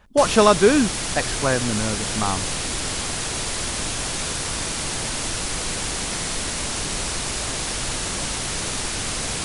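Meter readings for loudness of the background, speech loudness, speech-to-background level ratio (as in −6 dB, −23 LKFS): −24.5 LKFS, −20.5 LKFS, 4.0 dB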